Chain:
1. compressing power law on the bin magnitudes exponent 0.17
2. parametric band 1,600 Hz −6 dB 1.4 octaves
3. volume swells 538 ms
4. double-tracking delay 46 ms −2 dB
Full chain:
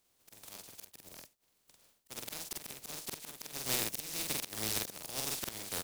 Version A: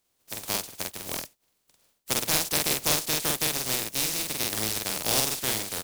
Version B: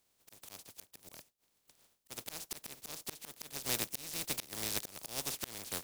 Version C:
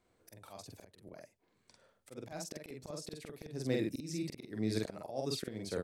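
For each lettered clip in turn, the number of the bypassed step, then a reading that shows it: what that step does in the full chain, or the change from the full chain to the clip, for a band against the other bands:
3, change in momentary loudness spread −7 LU
4, change in crest factor +3.0 dB
1, 8 kHz band −14.5 dB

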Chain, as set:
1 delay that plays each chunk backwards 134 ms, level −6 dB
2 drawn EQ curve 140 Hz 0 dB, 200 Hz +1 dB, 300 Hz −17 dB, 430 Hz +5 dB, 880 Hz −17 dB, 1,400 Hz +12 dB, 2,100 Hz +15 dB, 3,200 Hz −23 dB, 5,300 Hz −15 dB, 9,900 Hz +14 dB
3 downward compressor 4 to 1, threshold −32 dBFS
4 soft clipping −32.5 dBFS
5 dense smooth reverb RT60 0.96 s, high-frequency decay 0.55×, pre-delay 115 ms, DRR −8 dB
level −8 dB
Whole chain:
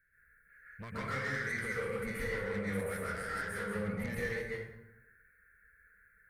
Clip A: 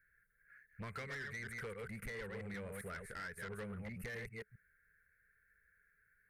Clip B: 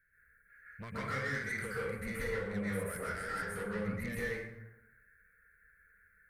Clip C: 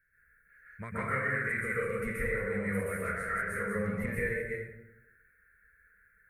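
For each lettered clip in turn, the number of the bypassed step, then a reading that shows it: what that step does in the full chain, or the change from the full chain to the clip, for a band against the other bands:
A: 5, 4 kHz band +3.0 dB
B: 1, 8 kHz band +1.5 dB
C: 4, distortion level −10 dB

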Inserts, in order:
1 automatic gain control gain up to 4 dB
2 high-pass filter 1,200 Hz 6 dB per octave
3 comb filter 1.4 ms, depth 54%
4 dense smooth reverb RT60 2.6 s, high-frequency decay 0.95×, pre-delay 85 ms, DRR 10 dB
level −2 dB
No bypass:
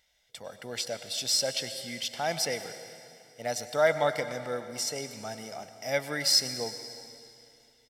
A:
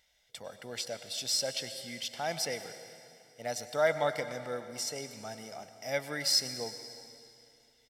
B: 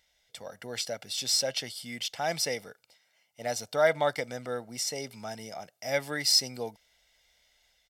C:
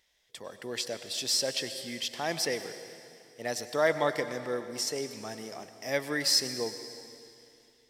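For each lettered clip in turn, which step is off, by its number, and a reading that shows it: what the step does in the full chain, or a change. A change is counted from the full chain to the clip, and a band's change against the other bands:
1, change in momentary loudness spread −1 LU
4, change in momentary loudness spread −4 LU
3, 250 Hz band +4.5 dB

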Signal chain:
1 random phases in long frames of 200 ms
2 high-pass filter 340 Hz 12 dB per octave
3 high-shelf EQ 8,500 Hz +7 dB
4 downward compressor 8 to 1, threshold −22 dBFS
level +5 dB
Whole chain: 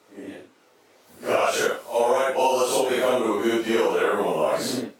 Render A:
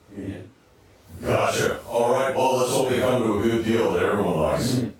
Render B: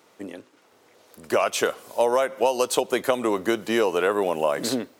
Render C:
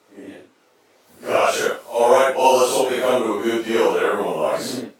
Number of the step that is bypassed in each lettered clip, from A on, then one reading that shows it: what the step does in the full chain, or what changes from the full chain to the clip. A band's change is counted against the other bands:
2, 125 Hz band +15.5 dB
1, change in crest factor +4.5 dB
4, average gain reduction 2.0 dB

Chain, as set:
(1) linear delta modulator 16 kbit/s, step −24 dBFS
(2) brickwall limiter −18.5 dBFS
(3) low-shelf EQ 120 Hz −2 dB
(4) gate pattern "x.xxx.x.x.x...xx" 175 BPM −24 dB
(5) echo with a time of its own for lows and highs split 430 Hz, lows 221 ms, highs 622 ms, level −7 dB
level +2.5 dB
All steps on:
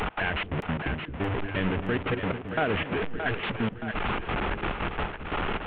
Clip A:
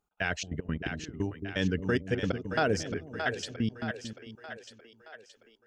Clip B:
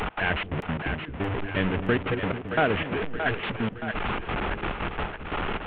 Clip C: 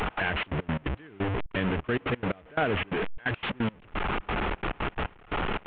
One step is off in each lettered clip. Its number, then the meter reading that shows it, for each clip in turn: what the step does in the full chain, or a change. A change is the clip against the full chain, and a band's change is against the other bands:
1, 1 kHz band −4.0 dB
2, change in crest factor +3.0 dB
5, echo-to-direct ratio −5.5 dB to none audible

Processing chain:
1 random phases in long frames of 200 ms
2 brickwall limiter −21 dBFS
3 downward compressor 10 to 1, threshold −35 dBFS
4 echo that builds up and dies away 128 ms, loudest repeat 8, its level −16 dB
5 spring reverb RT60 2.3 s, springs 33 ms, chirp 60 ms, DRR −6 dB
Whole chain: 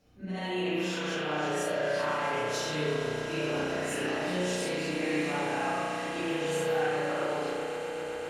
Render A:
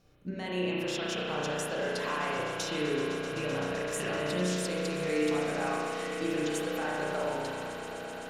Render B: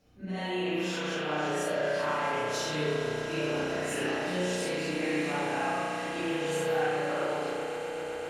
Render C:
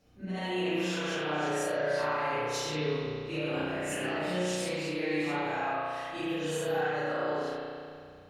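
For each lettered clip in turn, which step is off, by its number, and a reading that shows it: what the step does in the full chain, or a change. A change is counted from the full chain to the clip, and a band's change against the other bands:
1, 1 kHz band −2.0 dB
2, average gain reduction 1.5 dB
4, change in momentary loudness spread +2 LU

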